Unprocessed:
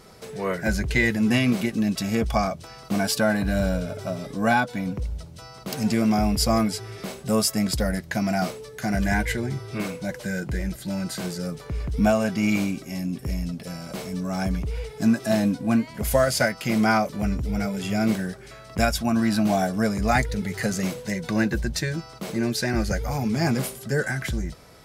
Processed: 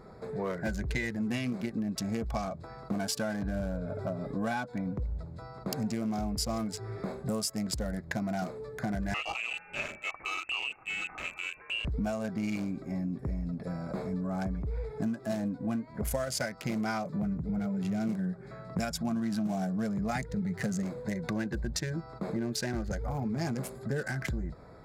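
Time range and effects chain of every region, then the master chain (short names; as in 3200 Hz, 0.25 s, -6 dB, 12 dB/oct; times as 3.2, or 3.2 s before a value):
9.14–11.85 inverted band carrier 2800 Hz + air absorption 200 m
17.05–20.83 HPF 81 Hz + bell 170 Hz +12 dB 0.44 oct
whole clip: Wiener smoothing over 15 samples; dynamic EQ 6700 Hz, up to +5 dB, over -46 dBFS, Q 0.97; compressor 6:1, threshold -30 dBFS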